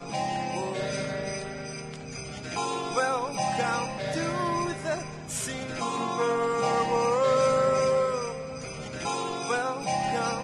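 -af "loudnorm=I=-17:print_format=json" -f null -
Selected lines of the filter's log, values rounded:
"input_i" : "-28.3",
"input_tp" : "-12.3",
"input_lra" : "4.6",
"input_thresh" : "-38.3",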